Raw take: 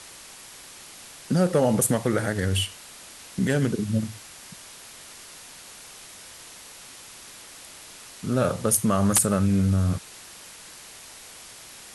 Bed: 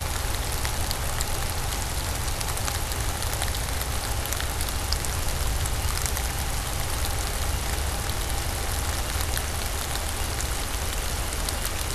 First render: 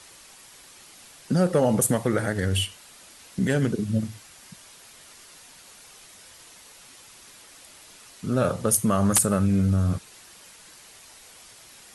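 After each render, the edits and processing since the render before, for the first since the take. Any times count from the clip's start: denoiser 6 dB, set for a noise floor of -45 dBFS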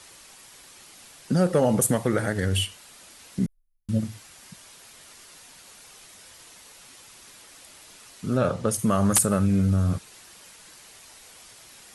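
3.46–3.89 inverse Chebyshev band-stop 130–6700 Hz, stop band 80 dB; 8.37–8.79 air absorption 55 m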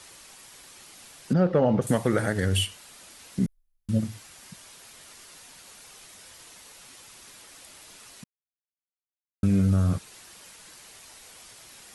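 1.33–1.87 air absorption 270 m; 8.24–9.43 mute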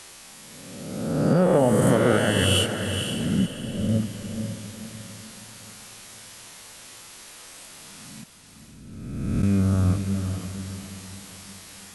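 spectral swells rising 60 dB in 1.53 s; diffused feedback echo 0.494 s, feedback 41%, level -7 dB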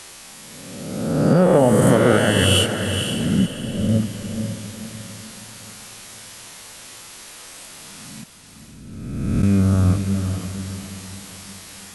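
gain +4.5 dB

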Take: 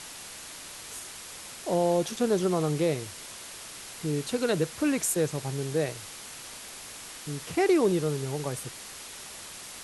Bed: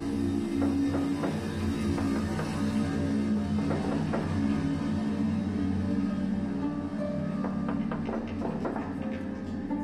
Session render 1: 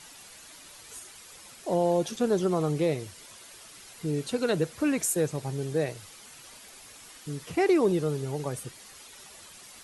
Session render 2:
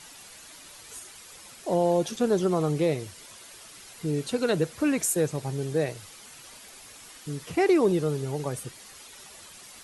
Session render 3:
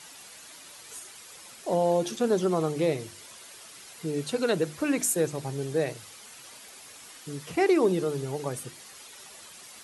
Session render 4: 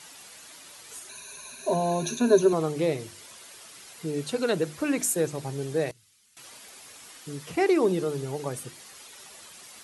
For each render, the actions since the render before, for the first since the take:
denoiser 9 dB, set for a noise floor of -43 dBFS
gain +1.5 dB
HPF 130 Hz 6 dB/oct; notches 50/100/150/200/250/300/350 Hz
1.09–2.53 ripple EQ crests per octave 1.5, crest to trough 18 dB; 5.91–6.37 passive tone stack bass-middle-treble 6-0-2

